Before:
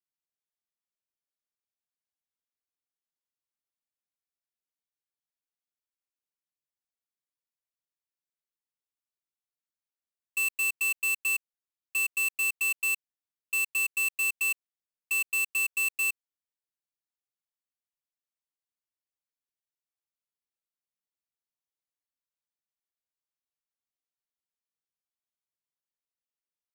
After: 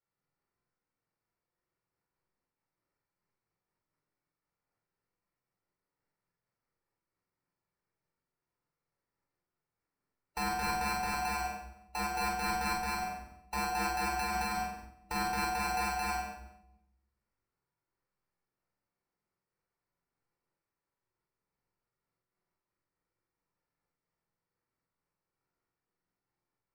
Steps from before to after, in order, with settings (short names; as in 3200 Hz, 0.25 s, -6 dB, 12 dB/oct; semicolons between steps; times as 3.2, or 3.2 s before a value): band inversion scrambler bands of 1000 Hz; notch 2500 Hz, Q 20; sample-and-hold 13×; on a send: flutter echo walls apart 7.9 m, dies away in 0.68 s; on the sum: shoebox room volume 2100 m³, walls furnished, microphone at 4.4 m; noise-modulated level, depth 50%; gain -1 dB